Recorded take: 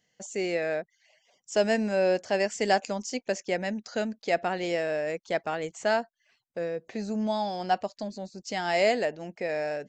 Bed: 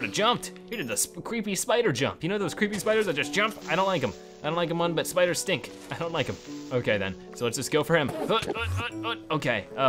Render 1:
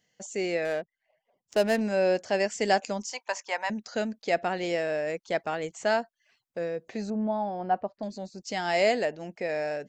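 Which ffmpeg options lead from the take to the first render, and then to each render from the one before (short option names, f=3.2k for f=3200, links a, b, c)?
-filter_complex "[0:a]asettb=1/sr,asplit=3[a][b][c];[a]atrim=end=0.654[d];[b]atrim=start=0.65:end=1.81,asetpts=PTS-STARTPTS,afade=t=in:d=0.004:c=qsin,afade=t=out:st=1.156:d=0.004:c=qsin,adynamicsmooth=sensitivity=7.5:basefreq=1k[e];[c]atrim=start=1.806[f];[d][e]acrossfade=d=0.004:c1=hsin:c2=qsin[g];[g][f]acrossfade=d=0.004:c1=qsin:c2=hsin,asettb=1/sr,asplit=3[h][i][j];[h]atrim=end=3.114[k];[i]atrim=start=3.11:end=3.7,asetpts=PTS-STARTPTS,afade=t=in:d=0.004:c=qsin,afade=t=out:st=0.586:d=0.004:c=qsin,highpass=f=970:t=q:w=7.4[l];[j]atrim=start=3.696[m];[k][l]acrossfade=d=0.004:c1=hsin:c2=qsin[n];[n][m]acrossfade=d=0.004:c1=qsin:c2=hsin,asettb=1/sr,asplit=3[o][p][q];[o]atrim=end=7.104[r];[p]atrim=start=7.1:end=8.03,asetpts=PTS-STARTPTS,afade=t=in:d=0.004:c=qsin,afade=t=out:st=0.926:d=0.004:c=qsin,lowpass=1.3k[s];[q]atrim=start=8.026[t];[r][s]acrossfade=d=0.004:c1=hsin:c2=qsin[u];[u][t]acrossfade=d=0.004:c1=qsin:c2=hsin"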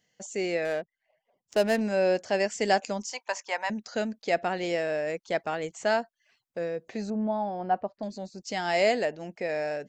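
-af anull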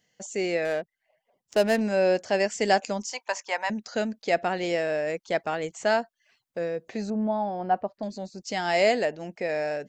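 -af "volume=2dB"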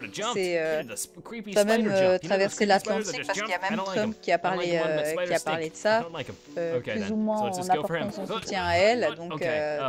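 -filter_complex "[1:a]volume=-7dB[a];[0:a][a]amix=inputs=2:normalize=0"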